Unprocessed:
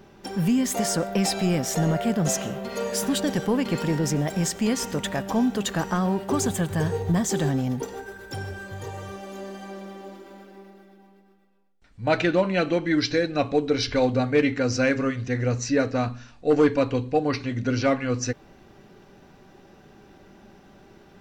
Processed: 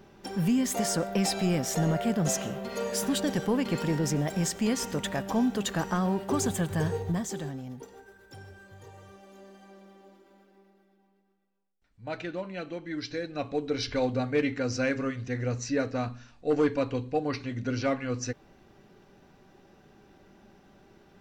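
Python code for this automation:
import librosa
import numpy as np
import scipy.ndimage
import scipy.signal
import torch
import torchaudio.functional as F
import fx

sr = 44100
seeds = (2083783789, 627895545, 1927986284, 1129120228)

y = fx.gain(x, sr, db=fx.line((6.91, -3.5), (7.58, -14.0), (12.79, -14.0), (13.84, -6.0)))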